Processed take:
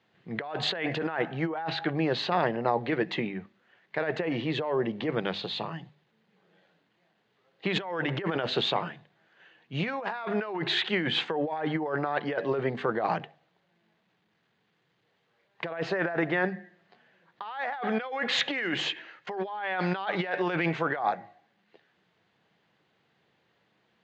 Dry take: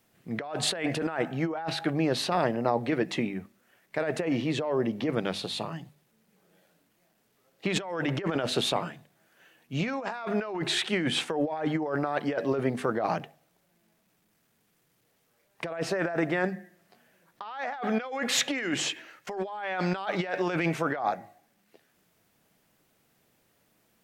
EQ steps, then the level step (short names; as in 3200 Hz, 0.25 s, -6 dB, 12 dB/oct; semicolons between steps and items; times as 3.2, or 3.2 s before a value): air absorption 200 m; speaker cabinet 110–6600 Hz, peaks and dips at 260 Hz -7 dB, 620 Hz -4 dB, 1300 Hz -4 dB, 2400 Hz -4 dB, 5500 Hz -9 dB; tilt shelf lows -3.5 dB; +4.0 dB